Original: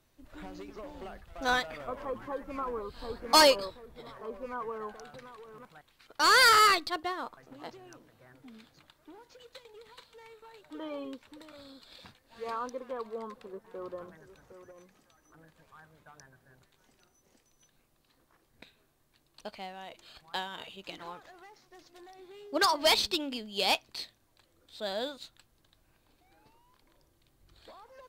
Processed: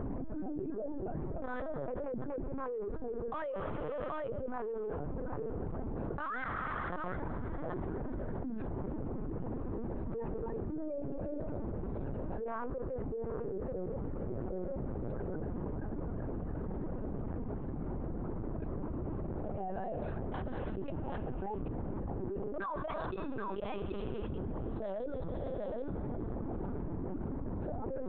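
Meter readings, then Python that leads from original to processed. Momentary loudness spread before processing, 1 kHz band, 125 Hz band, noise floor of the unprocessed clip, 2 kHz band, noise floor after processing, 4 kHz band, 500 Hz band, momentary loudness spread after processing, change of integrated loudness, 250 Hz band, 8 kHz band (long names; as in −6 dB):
25 LU, −10.5 dB, +17.5 dB, −70 dBFS, −15.0 dB, −39 dBFS, below −30 dB, −2.0 dB, 2 LU, −11.5 dB, +5.0 dB, below −40 dB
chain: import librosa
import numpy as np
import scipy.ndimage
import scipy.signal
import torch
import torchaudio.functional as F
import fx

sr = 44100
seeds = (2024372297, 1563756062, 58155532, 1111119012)

y = fx.wiener(x, sr, points=41)
y = fx.dmg_wind(y, sr, seeds[0], corner_hz=270.0, level_db=-45.0)
y = fx.dereverb_blind(y, sr, rt60_s=0.9)
y = scipy.signal.sosfilt(scipy.signal.cheby1(2, 1.0, 1200.0, 'lowpass', fs=sr, output='sos'), y)
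y = fx.dynamic_eq(y, sr, hz=850.0, q=5.3, threshold_db=-51.0, ratio=4.0, max_db=-8)
y = fx.rider(y, sr, range_db=3, speed_s=0.5)
y = fx.chopper(y, sr, hz=1.4, depth_pct=65, duty_pct=40)
y = fx.gate_flip(y, sr, shuts_db=-25.0, range_db=-28)
y = y + 10.0 ** (-17.0 / 20.0) * np.pad(y, (int(773 * sr / 1000.0), 0))[:len(y)]
y = fx.rev_schroeder(y, sr, rt60_s=2.7, comb_ms=27, drr_db=14.0)
y = fx.lpc_vocoder(y, sr, seeds[1], excitation='pitch_kept', order=10)
y = fx.env_flatten(y, sr, amount_pct=100)
y = y * librosa.db_to_amplitude(-5.0)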